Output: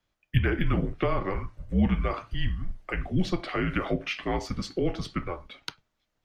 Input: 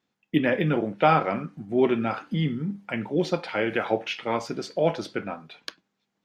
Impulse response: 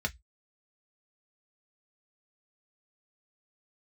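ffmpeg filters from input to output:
-filter_complex "[0:a]afreqshift=-180,acrossover=split=180[link_01][link_02];[link_02]acompressor=threshold=-25dB:ratio=6[link_03];[link_01][link_03]amix=inputs=2:normalize=0"

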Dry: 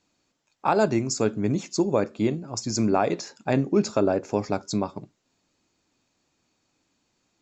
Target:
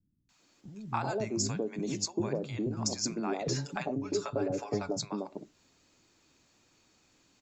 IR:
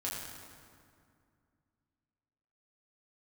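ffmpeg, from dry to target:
-filter_complex "[0:a]asettb=1/sr,asplit=3[link_01][link_02][link_03];[link_01]atrim=end=1.074[link_04];[link_02]atrim=start=1.07:end=2.11,asetpts=PTS-STARTPTS,afade=type=in:duration=0.004:curve=qsin,afade=type=out:start_time=1.036:duration=0.004:curve=qsin,bandreject=frequency=1300:width=6.2[link_05];[link_03]atrim=start=2.106[link_06];[link_04][link_05]acrossfade=duration=0.004:curve1=hsin:curve2=qsin[link_07];[link_07][link_06]acrossfade=duration=0.004:curve1=qsin:curve2=hsin,asettb=1/sr,asplit=3[link_08][link_09][link_10];[link_08]atrim=end=3.164[link_11];[link_09]atrim=start=3.16:end=4.6,asetpts=PTS-STARTPTS,afade=type=in:duration=0.004:curve=qsin,afade=type=out:start_time=1.436:duration=0.004:curve=qsin,aecho=1:1:7:0.77,atrim=end_sample=63504[link_12];[link_10]atrim=start=4.596[link_13];[link_11][link_12]acrossfade=duration=0.004:curve1=hsin:curve2=qsin[link_14];[link_14][link_13]acrossfade=duration=0.004:curve1=qsin:curve2=hsin,acompressor=threshold=-34dB:ratio=6,acrossover=split=210|730[link_15][link_16][link_17];[link_17]adelay=290[link_18];[link_16]adelay=390[link_19];[link_15][link_19][link_18]amix=inputs=3:normalize=0,volume=6dB"

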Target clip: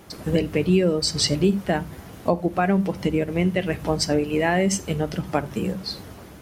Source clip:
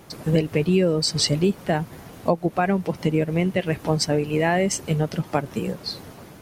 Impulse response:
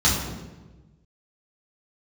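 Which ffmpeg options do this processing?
-filter_complex "[0:a]asplit=2[link_01][link_02];[1:a]atrim=start_sample=2205,afade=type=out:start_time=0.15:duration=0.01,atrim=end_sample=7056,lowshelf=frequency=85:gain=11.5[link_03];[link_02][link_03]afir=irnorm=-1:irlink=0,volume=-31dB[link_04];[link_01][link_04]amix=inputs=2:normalize=0"

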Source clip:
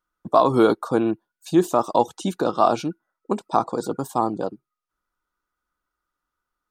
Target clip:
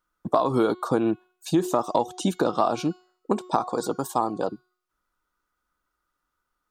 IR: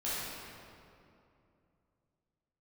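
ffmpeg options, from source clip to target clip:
-filter_complex "[0:a]asettb=1/sr,asplit=3[link_01][link_02][link_03];[link_01]atrim=end=3.564[link_04];[link_02]atrim=start=3.56:end=4.48,asetpts=PTS-STARTPTS,afade=type=in:duration=0.004:curve=qsin,afade=type=out:start_time=0.916:duration=0.004:curve=qsin,lowshelf=frequency=400:gain=-7[link_05];[link_03]atrim=start=4.476[link_06];[link_04][link_05]acrossfade=duration=0.004:curve1=hsin:curve2=qsin[link_07];[link_07][link_06]acrossfade=duration=0.004:curve1=qsin:curve2=hsin,bandreject=frequency=365.3:width_type=h:width=4,bandreject=frequency=730.6:width_type=h:width=4,bandreject=frequency=1095.9:width_type=h:width=4,bandreject=frequency=1461.2:width_type=h:width=4,bandreject=frequency=1826.5:width_type=h:width=4,bandreject=frequency=2191.8:width_type=h:width=4,bandreject=frequency=2557.1:width_type=h:width=4,bandreject=frequency=2922.4:width_type=h:width=4,bandreject=frequency=3287.7:width_type=h:width=4,bandreject=frequency=3653:width_type=h:width=4,bandreject=frequency=4018.3:width_type=h:width=4,bandreject=frequency=4383.6:width_type=h:width=4,bandreject=frequency=4748.9:width_type=h:width=4,bandreject=frequency=5114.2:width_type=h:width=4,bandreject=frequency=5479.5:width_type=h:width=4,bandreject=frequency=5844.8:width_type=h:width=4,bandreject=frequency=6210.1:width_type=h:width=4,bandreject=frequency=6575.4:width_type=h:width=4,bandreject=frequency=6940.7:width_type=h:width=4,bandreject=frequency=7306:width_type=h:width=4,acompressor=threshold=-21dB:ratio=6,volume=3dB"

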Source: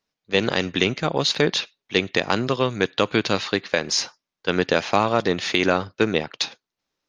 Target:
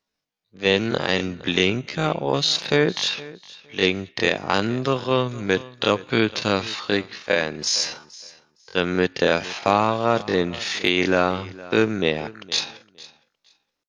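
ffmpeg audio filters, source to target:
ffmpeg -i in.wav -af "atempo=0.51,aecho=1:1:463|926:0.106|0.0191" out.wav

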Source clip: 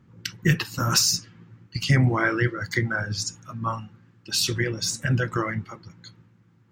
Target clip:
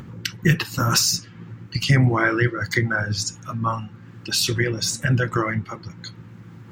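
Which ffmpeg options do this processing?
ffmpeg -i in.wav -filter_complex "[0:a]asplit=2[link_01][link_02];[link_02]acompressor=threshold=-33dB:ratio=6,volume=2dB[link_03];[link_01][link_03]amix=inputs=2:normalize=0,equalizer=frequency=5700:width=1.5:gain=-2,acompressor=mode=upward:threshold=-32dB:ratio=2.5,volume=1dB" out.wav

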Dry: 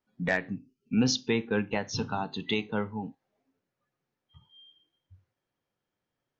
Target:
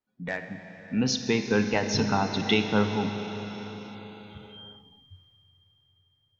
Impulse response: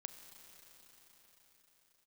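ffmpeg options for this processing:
-filter_complex "[0:a]dynaudnorm=framelen=240:gausssize=11:maxgain=13dB[link_01];[1:a]atrim=start_sample=2205[link_02];[link_01][link_02]afir=irnorm=-1:irlink=0"

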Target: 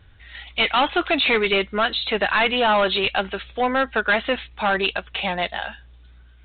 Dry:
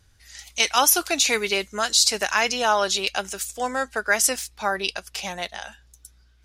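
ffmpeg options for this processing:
ffmpeg -i in.wav -af "apsyclip=11.5dB,aresample=8000,asoftclip=type=tanh:threshold=-10.5dB,aresample=44100,volume=-3dB" out.wav

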